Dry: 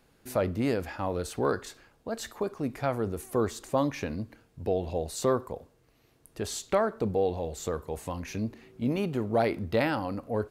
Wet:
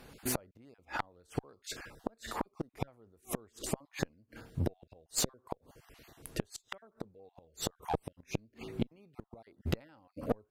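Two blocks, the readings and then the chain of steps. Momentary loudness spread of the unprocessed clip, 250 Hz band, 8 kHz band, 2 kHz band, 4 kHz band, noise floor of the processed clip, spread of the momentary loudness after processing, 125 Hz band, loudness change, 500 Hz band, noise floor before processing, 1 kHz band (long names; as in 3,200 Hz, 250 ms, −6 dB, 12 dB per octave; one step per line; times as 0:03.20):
10 LU, −9.5 dB, +0.5 dB, −8.0 dB, −1.5 dB, −77 dBFS, 17 LU, −6.5 dB, −9.0 dB, −14.0 dB, −65 dBFS, −9.5 dB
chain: time-frequency cells dropped at random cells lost 22%
gate with flip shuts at −26 dBFS, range −40 dB
asymmetric clip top −40 dBFS
level +10 dB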